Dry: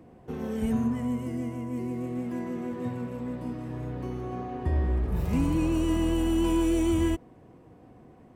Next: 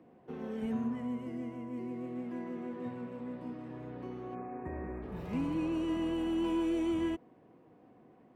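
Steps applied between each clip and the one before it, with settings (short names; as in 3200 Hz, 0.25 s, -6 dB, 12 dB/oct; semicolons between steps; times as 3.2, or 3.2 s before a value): spectral gain 4.35–5.02, 2700–6400 Hz -26 dB; three-band isolator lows -16 dB, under 150 Hz, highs -14 dB, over 4400 Hz; gain -6 dB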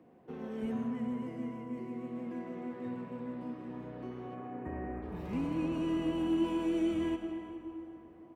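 feedback echo 0.4 s, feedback 32%, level -18 dB; digital reverb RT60 3.6 s, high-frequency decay 0.4×, pre-delay 80 ms, DRR 5.5 dB; gain -1 dB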